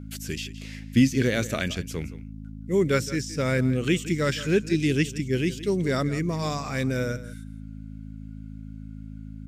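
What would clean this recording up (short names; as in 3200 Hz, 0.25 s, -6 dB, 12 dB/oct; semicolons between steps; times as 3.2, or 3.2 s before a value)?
de-hum 53.3 Hz, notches 5; inverse comb 0.17 s -15.5 dB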